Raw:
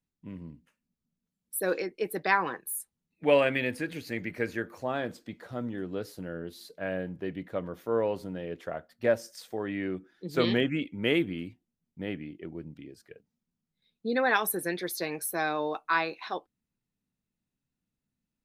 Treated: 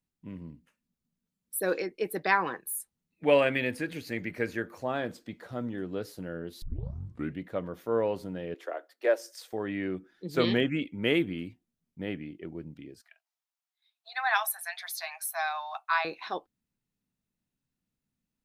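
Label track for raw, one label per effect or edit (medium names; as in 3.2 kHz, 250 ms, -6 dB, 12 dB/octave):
6.620000	6.620000	tape start 0.78 s
8.540000	9.530000	steep high-pass 290 Hz 72 dB/octave
13.010000	16.050000	Chebyshev high-pass 650 Hz, order 8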